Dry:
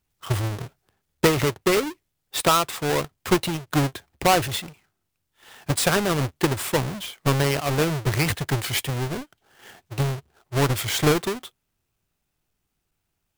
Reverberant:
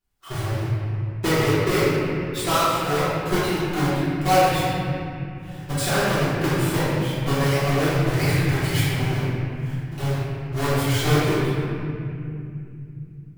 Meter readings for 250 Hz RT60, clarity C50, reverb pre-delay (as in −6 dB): 4.4 s, −4.5 dB, 3 ms